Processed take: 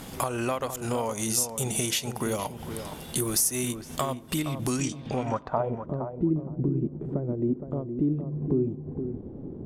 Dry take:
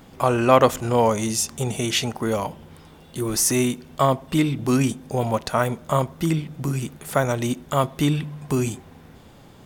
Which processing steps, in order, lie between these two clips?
high-shelf EQ 3,600 Hz +7 dB
downward compressor 16 to 1, threshold −31 dBFS, peak gain reduction 23 dB
transient designer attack −2 dB, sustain −6 dB
low-pass filter sweep 12,000 Hz → 360 Hz, 0:04.63–0:05.86
on a send: feedback echo with a low-pass in the loop 466 ms, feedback 19%, low-pass 1,300 Hz, level −8 dB
on the sum: level +6 dB

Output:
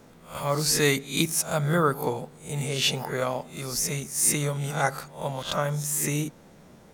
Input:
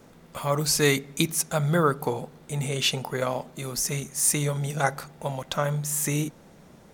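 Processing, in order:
peak hold with a rise ahead of every peak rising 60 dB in 0.36 s
level −1.5 dB

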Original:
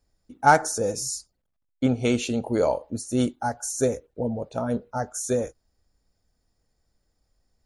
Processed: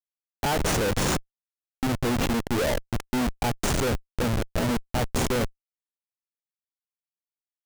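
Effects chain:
comparator with hysteresis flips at −26 dBFS
level +3.5 dB

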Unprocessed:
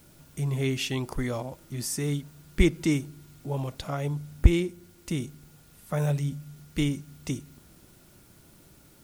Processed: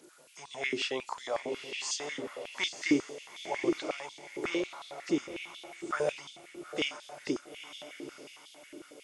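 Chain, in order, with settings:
hearing-aid frequency compression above 3,500 Hz 1.5 to 1
feedback delay with all-pass diffusion 932 ms, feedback 42%, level −8 dB
high-pass on a step sequencer 11 Hz 360–3,500 Hz
level −3 dB

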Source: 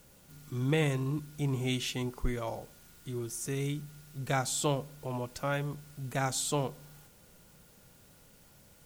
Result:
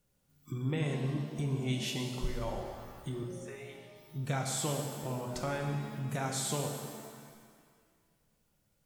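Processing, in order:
low-shelf EQ 190 Hz +5 dB
downward compressor 2.5 to 1, threshold −39 dBFS, peak gain reduction 12.5 dB
0:03.23–0:03.96: three-way crossover with the lows and the highs turned down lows −22 dB, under 500 Hz, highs −18 dB, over 2,900 Hz
noise reduction from a noise print of the clip's start 22 dB
reverb with rising layers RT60 1.8 s, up +7 semitones, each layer −8 dB, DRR 2 dB
level +2.5 dB

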